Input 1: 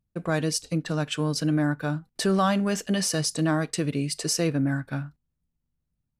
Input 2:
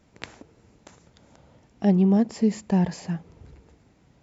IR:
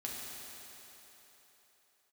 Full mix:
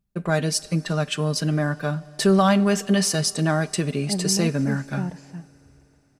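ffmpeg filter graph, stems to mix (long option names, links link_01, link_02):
-filter_complex "[0:a]aecho=1:1:5:0.52,volume=2dB,asplit=2[link_01][link_02];[link_02]volume=-19.5dB[link_03];[1:a]highshelf=frequency=5300:gain=-10.5,adelay=2250,volume=-8dB[link_04];[2:a]atrim=start_sample=2205[link_05];[link_03][link_05]afir=irnorm=-1:irlink=0[link_06];[link_01][link_04][link_06]amix=inputs=3:normalize=0"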